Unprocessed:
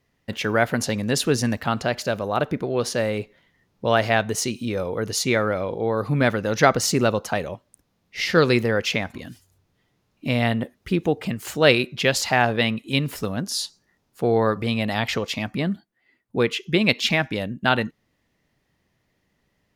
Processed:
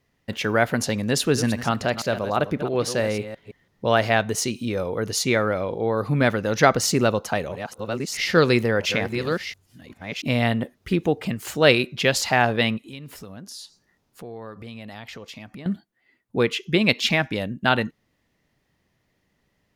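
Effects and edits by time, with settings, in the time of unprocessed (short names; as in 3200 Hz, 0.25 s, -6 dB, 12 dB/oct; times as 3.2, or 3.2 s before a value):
1.19–3.87 reverse delay 0.166 s, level -11 dB
6.81–11.03 reverse delay 0.682 s, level -8 dB
12.77–15.66 compressor 3:1, threshold -40 dBFS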